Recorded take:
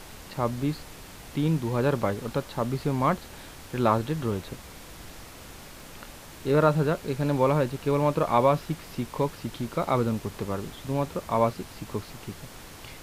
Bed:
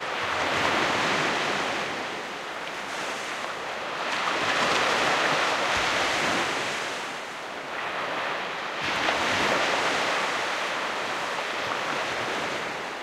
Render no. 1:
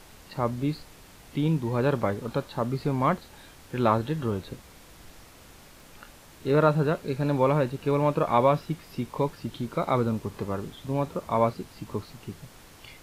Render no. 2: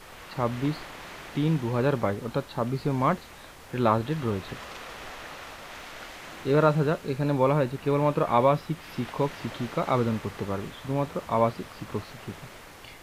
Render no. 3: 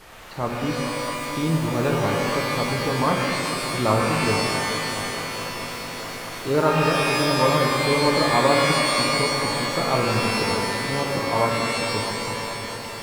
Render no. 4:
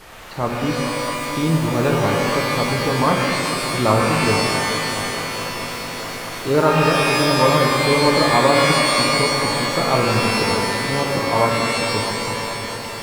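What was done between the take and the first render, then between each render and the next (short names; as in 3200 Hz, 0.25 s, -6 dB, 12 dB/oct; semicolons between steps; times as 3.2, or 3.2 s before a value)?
noise print and reduce 6 dB
add bed -18 dB
multi-head echo 0.214 s, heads second and third, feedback 72%, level -13 dB; shimmer reverb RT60 1.9 s, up +12 st, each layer -2 dB, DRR 1 dB
gain +4 dB; limiter -3 dBFS, peak gain reduction 2.5 dB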